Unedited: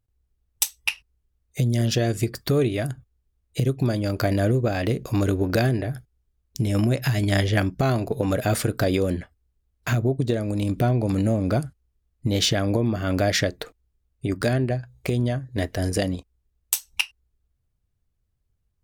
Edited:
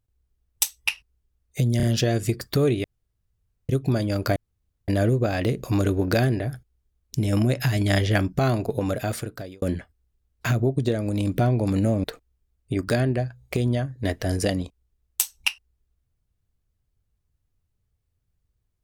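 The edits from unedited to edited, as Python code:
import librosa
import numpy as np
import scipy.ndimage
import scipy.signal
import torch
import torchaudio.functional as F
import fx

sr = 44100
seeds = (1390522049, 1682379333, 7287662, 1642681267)

y = fx.edit(x, sr, fx.stutter(start_s=1.77, slice_s=0.03, count=3),
    fx.room_tone_fill(start_s=2.78, length_s=0.85),
    fx.insert_room_tone(at_s=4.3, length_s=0.52),
    fx.fade_out_span(start_s=8.08, length_s=0.96),
    fx.cut(start_s=11.46, length_s=2.11), tone=tone)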